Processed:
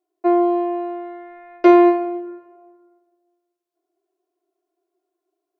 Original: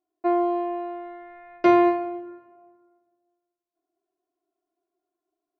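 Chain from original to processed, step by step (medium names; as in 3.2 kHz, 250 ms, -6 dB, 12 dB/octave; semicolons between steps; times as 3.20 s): resonant low shelf 290 Hz -7.5 dB, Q 3; trim +2.5 dB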